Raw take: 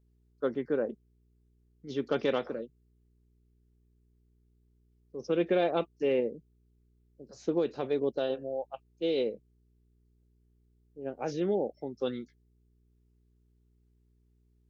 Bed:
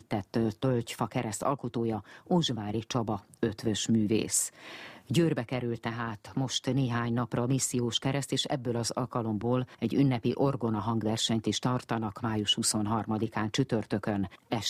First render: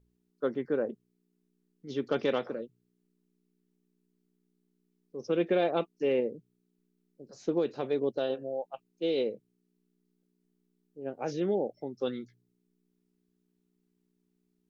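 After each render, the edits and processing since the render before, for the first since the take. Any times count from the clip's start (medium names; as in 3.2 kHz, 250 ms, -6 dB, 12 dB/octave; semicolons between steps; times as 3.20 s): de-hum 60 Hz, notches 2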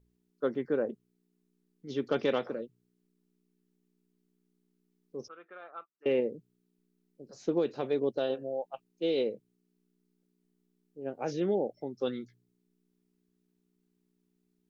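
5.28–6.06 s: band-pass filter 1.3 kHz, Q 8.1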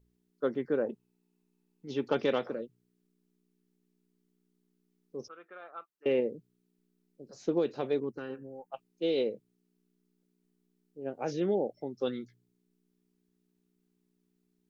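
0.86–2.14 s: small resonant body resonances 880/2600 Hz, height 11 dB, ringing for 25 ms; 8.00–8.72 s: static phaser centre 1.5 kHz, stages 4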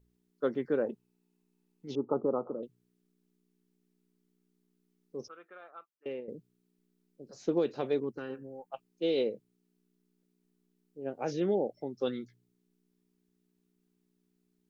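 1.95–2.63 s: rippled Chebyshev low-pass 1.3 kHz, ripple 3 dB; 5.26–6.28 s: fade out linear, to -16.5 dB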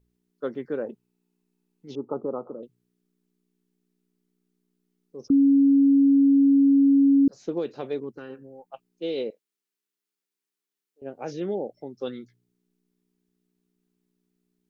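5.30–7.28 s: bleep 277 Hz -14 dBFS; 9.30–11.02 s: high-pass 1.1 kHz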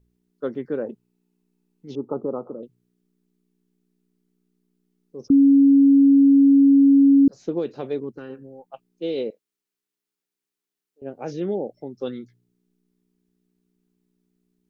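bass shelf 430 Hz +5.5 dB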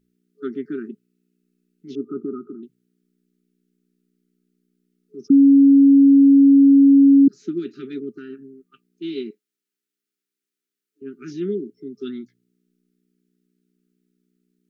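FFT band-reject 420–1200 Hz; resonant low shelf 140 Hz -12.5 dB, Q 1.5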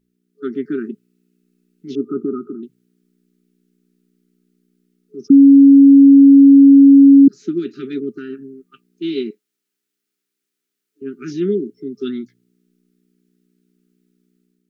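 level rider gain up to 6.5 dB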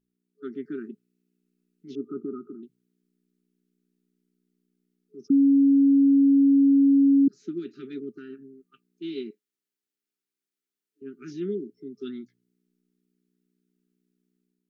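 trim -11.5 dB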